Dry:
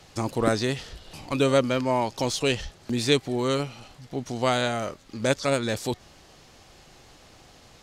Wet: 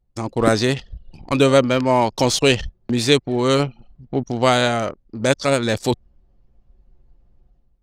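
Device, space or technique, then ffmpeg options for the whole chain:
voice memo with heavy noise removal: -af "anlmdn=3.98,dynaudnorm=framelen=140:gausssize=5:maxgain=11.5dB"

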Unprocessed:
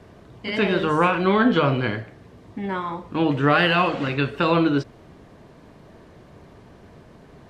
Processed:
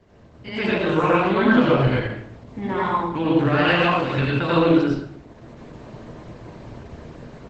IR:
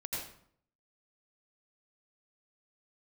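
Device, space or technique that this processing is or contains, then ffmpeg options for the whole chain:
speakerphone in a meeting room: -filter_complex "[1:a]atrim=start_sample=2205[link_01];[0:a][link_01]afir=irnorm=-1:irlink=0,asplit=2[link_02][link_03];[link_03]adelay=120,highpass=300,lowpass=3400,asoftclip=type=hard:threshold=-13.5dB,volume=-14dB[link_04];[link_02][link_04]amix=inputs=2:normalize=0,dynaudnorm=framelen=330:gausssize=3:maxgain=10.5dB,volume=-4dB" -ar 48000 -c:a libopus -b:a 12k

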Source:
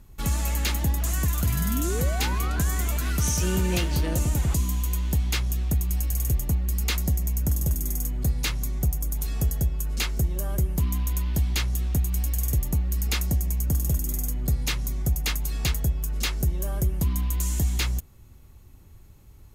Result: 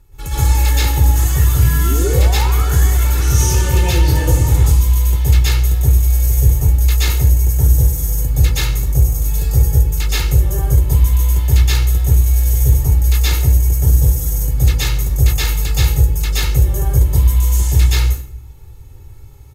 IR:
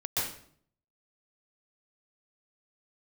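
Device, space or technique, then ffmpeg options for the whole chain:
microphone above a desk: -filter_complex "[0:a]aecho=1:1:2.3:0.72[link_01];[1:a]atrim=start_sample=2205[link_02];[link_01][link_02]afir=irnorm=-1:irlink=0"

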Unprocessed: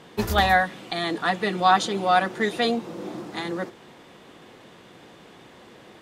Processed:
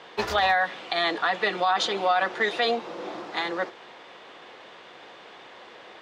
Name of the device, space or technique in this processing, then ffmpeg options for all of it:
DJ mixer with the lows and highs turned down: -filter_complex "[0:a]acrossover=split=440 5600:gain=0.126 1 0.0794[link_01][link_02][link_03];[link_01][link_02][link_03]amix=inputs=3:normalize=0,alimiter=limit=-18.5dB:level=0:latency=1:release=51,volume=5dB"

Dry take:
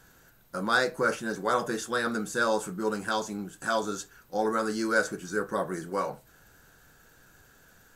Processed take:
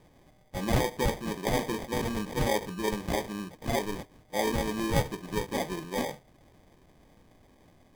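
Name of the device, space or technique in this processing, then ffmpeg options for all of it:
crushed at another speed: -af "asetrate=35280,aresample=44100,acrusher=samples=40:mix=1:aa=0.000001,asetrate=55125,aresample=44100,volume=-1dB"

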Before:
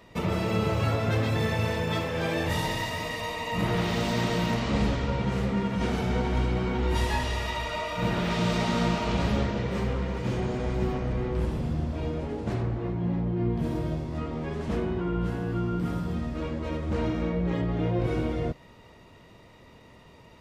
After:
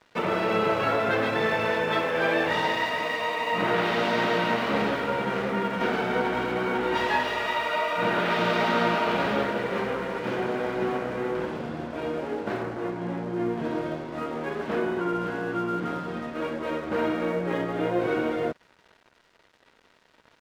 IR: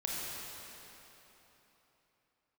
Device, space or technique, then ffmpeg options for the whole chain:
pocket radio on a weak battery: -af "highpass=330,lowpass=3100,aeval=exprs='sgn(val(0))*max(abs(val(0))-0.00224,0)':channel_layout=same,equalizer=frequency=1500:width_type=o:width=0.26:gain=6,volume=6.5dB"

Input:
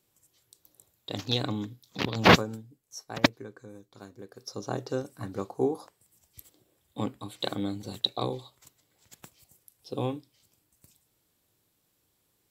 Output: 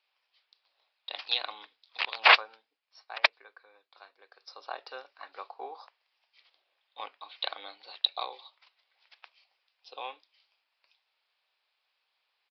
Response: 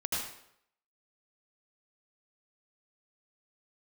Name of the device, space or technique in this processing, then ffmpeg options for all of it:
musical greeting card: -af "aresample=11025,aresample=44100,highpass=frequency=720:width=0.5412,highpass=frequency=720:width=1.3066,equalizer=frequency=2500:width_type=o:width=0.43:gain=6.5"

